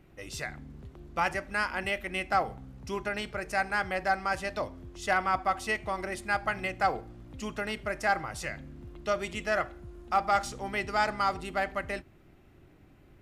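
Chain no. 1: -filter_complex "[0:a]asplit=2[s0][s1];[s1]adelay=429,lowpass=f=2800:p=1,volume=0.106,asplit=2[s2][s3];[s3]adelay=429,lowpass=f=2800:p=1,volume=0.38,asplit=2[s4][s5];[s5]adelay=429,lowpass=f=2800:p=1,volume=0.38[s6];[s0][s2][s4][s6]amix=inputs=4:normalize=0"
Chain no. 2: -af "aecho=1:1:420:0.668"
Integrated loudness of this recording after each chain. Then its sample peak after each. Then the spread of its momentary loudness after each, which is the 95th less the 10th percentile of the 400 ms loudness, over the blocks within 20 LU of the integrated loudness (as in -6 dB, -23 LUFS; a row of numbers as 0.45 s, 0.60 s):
-31.0 LUFS, -30.0 LUFS; -15.0 dBFS, -13.0 dBFS; 11 LU, 10 LU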